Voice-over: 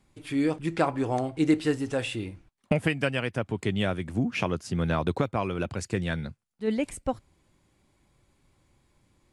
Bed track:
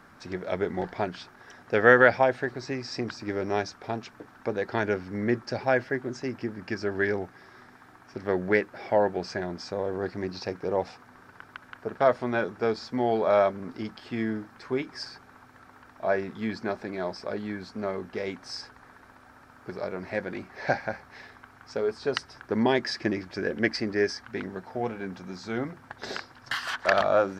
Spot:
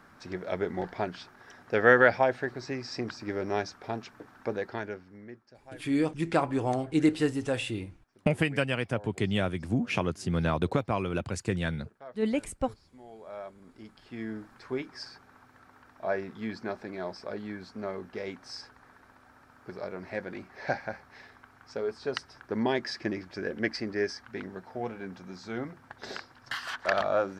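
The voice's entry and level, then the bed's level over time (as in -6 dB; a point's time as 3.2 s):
5.55 s, -1.0 dB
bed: 4.55 s -2.5 dB
5.49 s -25 dB
13.03 s -25 dB
14.48 s -4.5 dB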